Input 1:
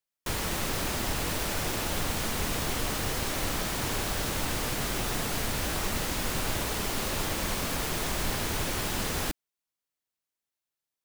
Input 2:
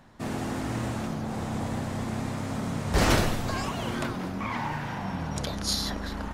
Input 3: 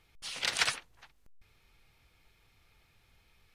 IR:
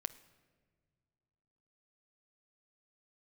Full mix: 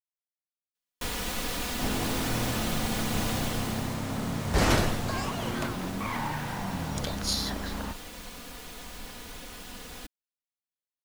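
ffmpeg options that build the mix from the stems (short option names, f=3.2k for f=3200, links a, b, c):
-filter_complex "[0:a]equalizer=f=3.5k:w=1.5:g=3,aecho=1:1:4.1:0.56,adelay=750,volume=-3.5dB,afade=t=out:st=3.33:d=0.66:silence=0.298538[a];[1:a]adelay=1600,volume=-1dB[b];[a][b]amix=inputs=2:normalize=0"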